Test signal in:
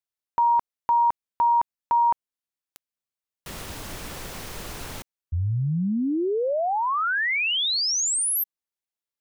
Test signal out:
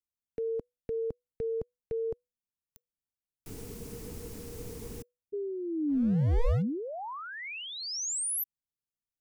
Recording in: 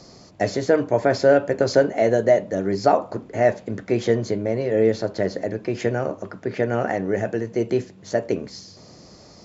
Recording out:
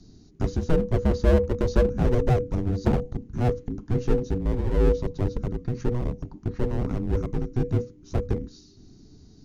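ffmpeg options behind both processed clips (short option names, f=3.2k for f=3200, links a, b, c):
-af "equalizer=f=125:t=o:w=1:g=-6,equalizer=f=250:t=o:w=1:g=5,equalizer=f=500:t=o:w=1:g=11,equalizer=f=1k:t=o:w=1:g=-7,equalizer=f=2k:t=o:w=1:g=-8,equalizer=f=4k:t=o:w=1:g=-8,aeval=exprs='clip(val(0),-1,0.119)':c=same,afreqshift=-490,volume=-7dB"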